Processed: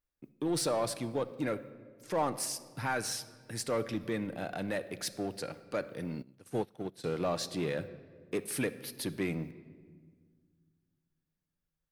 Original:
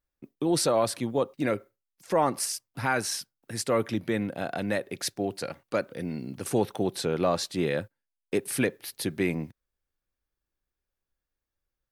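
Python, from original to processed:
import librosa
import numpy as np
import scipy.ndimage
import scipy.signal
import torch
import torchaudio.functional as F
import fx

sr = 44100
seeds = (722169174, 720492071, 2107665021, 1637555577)

p1 = np.clip(x, -10.0 ** (-29.5 / 20.0), 10.0 ** (-29.5 / 20.0))
p2 = x + F.gain(torch.from_numpy(p1), -3.0).numpy()
p3 = fx.room_shoebox(p2, sr, seeds[0], volume_m3=2200.0, walls='mixed', distance_m=0.48)
p4 = fx.upward_expand(p3, sr, threshold_db=-32.0, expansion=2.5, at=(6.22, 7.04))
y = F.gain(torch.from_numpy(p4), -9.0).numpy()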